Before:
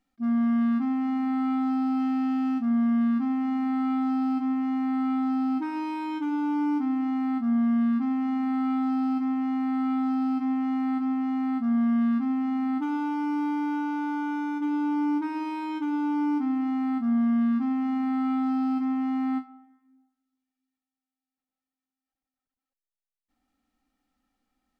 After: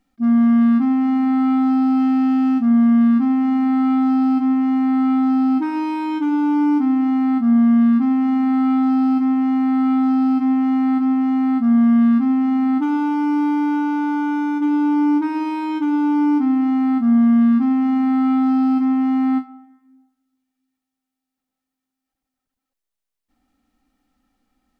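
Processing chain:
low-shelf EQ 450 Hz +4 dB
level +6.5 dB

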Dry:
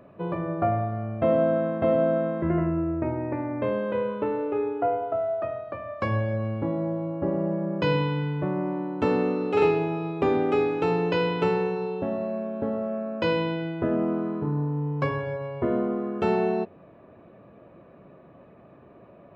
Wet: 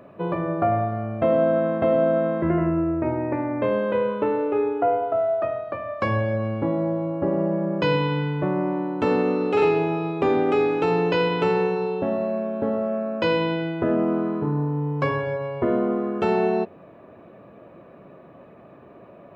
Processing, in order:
low-shelf EQ 140 Hz −6.5 dB
in parallel at +3 dB: brickwall limiter −19 dBFS, peak gain reduction 8 dB
on the sum: level −2.5 dB

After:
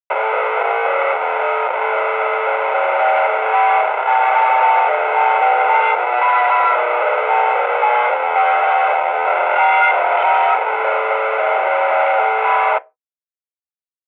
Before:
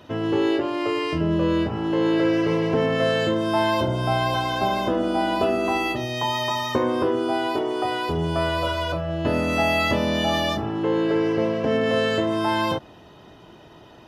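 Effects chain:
comparator with hysteresis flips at −28 dBFS
convolution reverb RT60 0.25 s, pre-delay 3 ms, DRR 16 dB
single-sideband voice off tune +110 Hz 460–2,600 Hz

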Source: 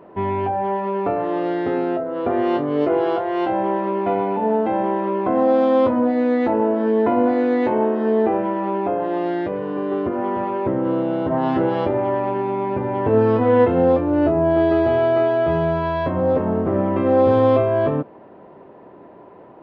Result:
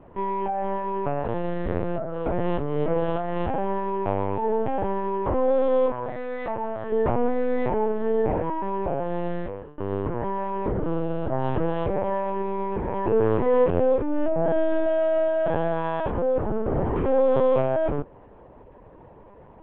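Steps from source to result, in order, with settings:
0:05.91–0:06.92: high-pass filter 630 Hz 12 dB per octave
0:09.36–0:09.79: fade out linear
linear-prediction vocoder at 8 kHz pitch kept
level −4.5 dB

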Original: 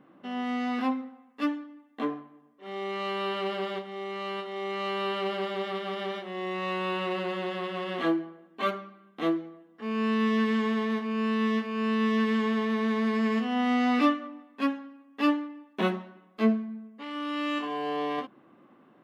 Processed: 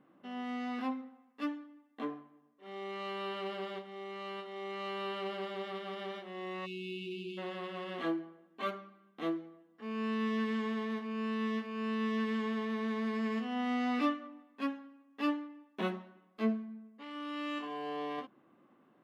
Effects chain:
time-frequency box erased 0:06.66–0:07.38, 430–2,200 Hz
level −8 dB

